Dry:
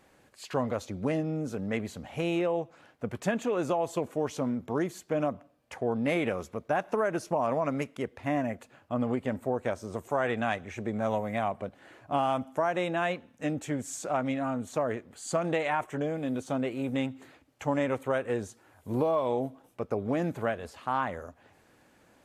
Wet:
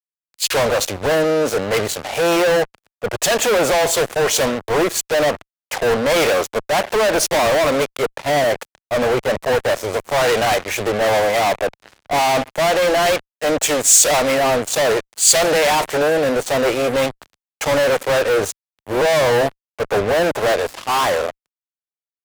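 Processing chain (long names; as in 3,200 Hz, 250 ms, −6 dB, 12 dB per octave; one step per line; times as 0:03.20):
low shelf with overshoot 340 Hz −13.5 dB, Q 1.5
fuzz pedal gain 46 dB, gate −47 dBFS
multiband upward and downward expander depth 100%
level −1 dB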